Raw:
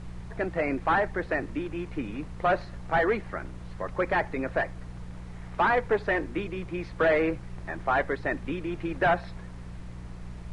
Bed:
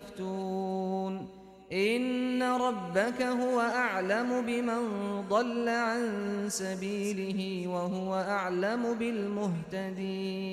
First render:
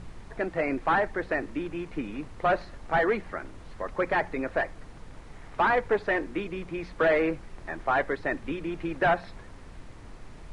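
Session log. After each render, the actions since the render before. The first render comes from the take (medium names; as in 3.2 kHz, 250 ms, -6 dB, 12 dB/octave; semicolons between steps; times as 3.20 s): de-hum 60 Hz, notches 3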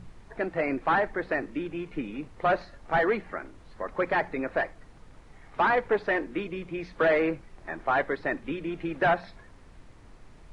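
noise print and reduce 6 dB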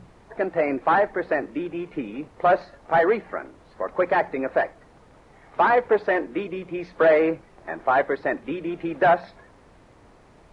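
high-pass 66 Hz 6 dB/octave; peaking EQ 610 Hz +7 dB 2.1 oct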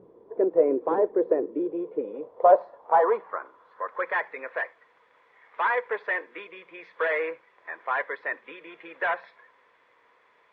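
band-pass sweep 370 Hz -> 2 kHz, 1.51–4.26 s; small resonant body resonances 480/1000/3400 Hz, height 12 dB, ringing for 25 ms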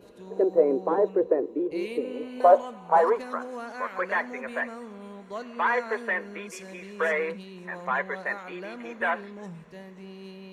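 add bed -9 dB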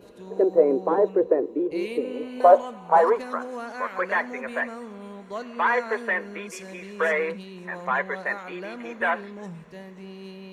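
trim +2.5 dB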